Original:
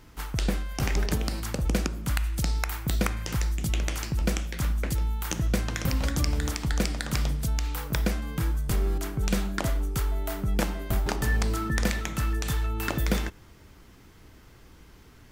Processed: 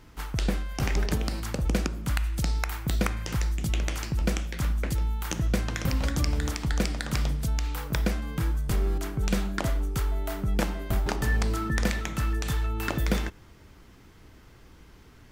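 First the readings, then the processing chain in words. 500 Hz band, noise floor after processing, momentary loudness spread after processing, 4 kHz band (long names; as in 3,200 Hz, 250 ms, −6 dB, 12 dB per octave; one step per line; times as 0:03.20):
0.0 dB, −52 dBFS, 3 LU, −1.0 dB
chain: high-shelf EQ 7,000 Hz −4.5 dB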